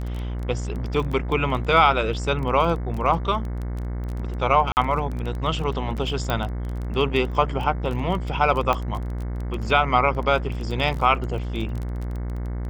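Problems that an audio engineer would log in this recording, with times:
buzz 60 Hz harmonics 37 -28 dBFS
crackle 16 per s -28 dBFS
4.72–4.77 s: dropout 49 ms
6.30 s: pop -10 dBFS
8.73 s: pop -10 dBFS

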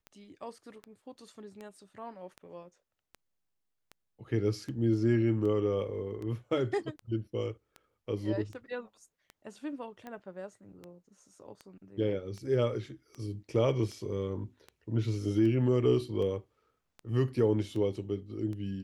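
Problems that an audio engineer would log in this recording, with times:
tick 78 rpm -30 dBFS

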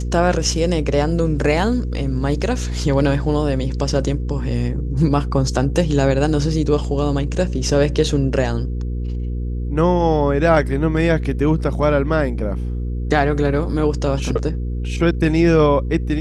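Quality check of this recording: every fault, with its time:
hum 60 Hz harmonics 8 -23 dBFS

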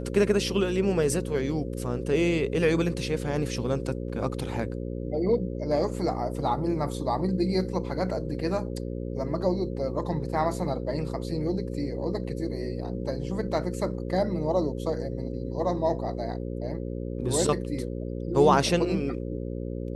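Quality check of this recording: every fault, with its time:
buzz 60 Hz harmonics 9 -33 dBFS

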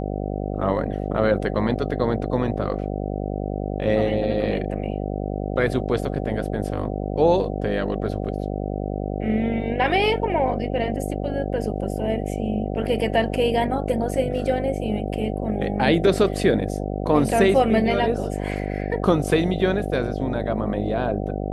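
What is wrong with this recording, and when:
buzz 50 Hz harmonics 15 -27 dBFS

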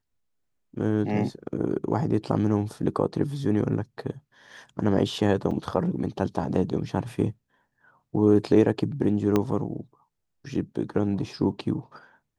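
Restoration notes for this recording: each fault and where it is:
5.51 s: dropout 4.1 ms
9.36 s: pop -10 dBFS

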